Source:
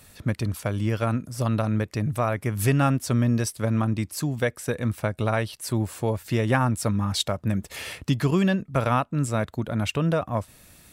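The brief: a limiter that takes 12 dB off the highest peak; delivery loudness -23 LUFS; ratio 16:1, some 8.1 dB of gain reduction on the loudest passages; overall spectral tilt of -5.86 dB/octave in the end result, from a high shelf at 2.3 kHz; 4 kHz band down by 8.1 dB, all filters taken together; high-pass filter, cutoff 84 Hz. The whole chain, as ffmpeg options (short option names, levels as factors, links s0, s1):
-af "highpass=84,highshelf=f=2300:g=-3.5,equalizer=f=4000:t=o:g=-7,acompressor=threshold=0.0562:ratio=16,volume=4.22,alimiter=limit=0.237:level=0:latency=1"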